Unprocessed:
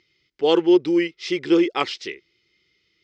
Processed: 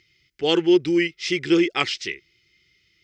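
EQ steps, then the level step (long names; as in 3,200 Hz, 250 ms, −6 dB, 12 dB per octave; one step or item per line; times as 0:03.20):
octave-band graphic EQ 250/500/1,000/4,000 Hz −7/−10/−12/−6 dB
+8.5 dB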